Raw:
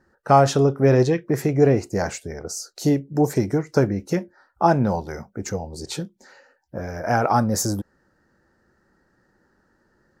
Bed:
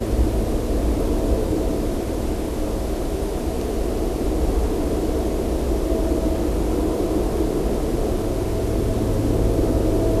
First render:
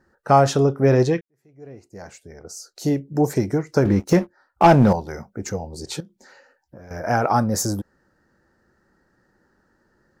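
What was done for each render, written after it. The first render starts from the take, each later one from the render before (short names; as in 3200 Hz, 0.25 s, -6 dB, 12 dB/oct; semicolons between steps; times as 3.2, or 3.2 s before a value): 1.21–3.1 fade in quadratic; 3.85–4.93 sample leveller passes 2; 6–6.91 compressor, threshold -39 dBFS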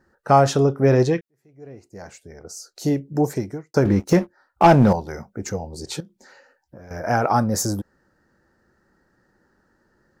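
3.16–3.74 fade out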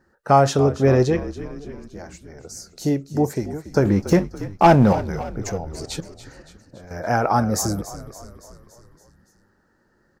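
frequency-shifting echo 0.283 s, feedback 57%, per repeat -50 Hz, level -14.5 dB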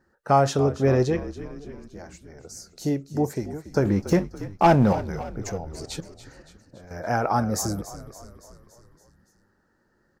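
gain -4 dB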